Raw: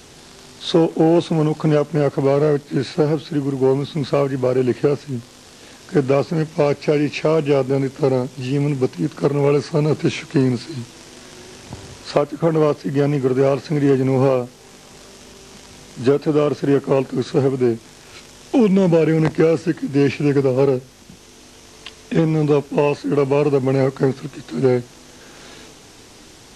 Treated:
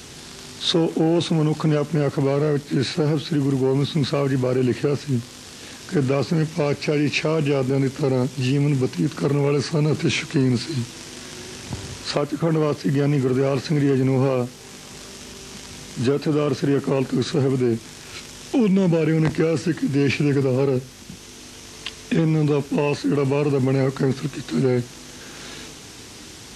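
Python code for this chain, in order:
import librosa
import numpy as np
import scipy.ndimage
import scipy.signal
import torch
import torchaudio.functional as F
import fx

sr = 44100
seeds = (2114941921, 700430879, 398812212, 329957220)

p1 = fx.over_compress(x, sr, threshold_db=-22.0, ratio=-1.0)
p2 = x + (p1 * librosa.db_to_amplitude(-1.0))
p3 = scipy.signal.sosfilt(scipy.signal.butter(2, 44.0, 'highpass', fs=sr, output='sos'), p2)
p4 = fx.peak_eq(p3, sr, hz=640.0, db=-5.5, octaves=1.7)
y = p4 * librosa.db_to_amplitude(-3.5)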